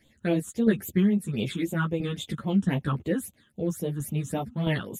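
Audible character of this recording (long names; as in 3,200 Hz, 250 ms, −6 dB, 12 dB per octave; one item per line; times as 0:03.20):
phaser sweep stages 8, 3.7 Hz, lowest notch 620–1,700 Hz
tremolo saw down 1.5 Hz, depth 55%
a shimmering, thickened sound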